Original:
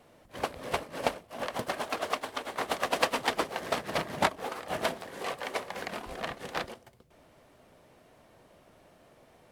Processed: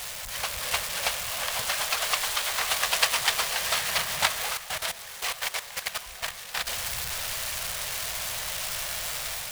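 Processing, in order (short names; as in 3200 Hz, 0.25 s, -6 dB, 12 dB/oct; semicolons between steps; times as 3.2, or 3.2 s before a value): zero-crossing step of -30.5 dBFS; high shelf 2600 Hz +3.5 dB; AGC gain up to 4 dB; diffused feedback echo 0.542 s, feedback 41%, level -10.5 dB; 4.57–6.67 level quantiser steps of 13 dB; passive tone stack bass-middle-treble 10-0-10; gain +3.5 dB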